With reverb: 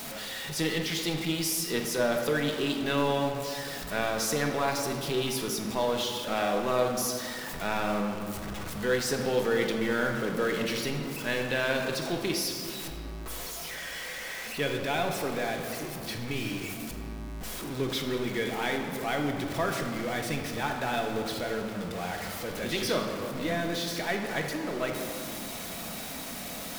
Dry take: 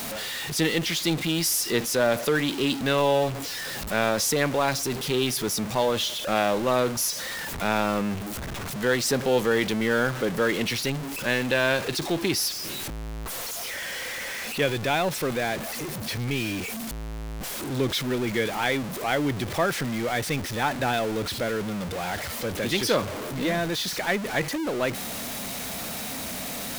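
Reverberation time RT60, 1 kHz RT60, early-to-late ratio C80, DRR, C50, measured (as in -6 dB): 2.7 s, 2.6 s, 5.5 dB, 2.0 dB, 4.5 dB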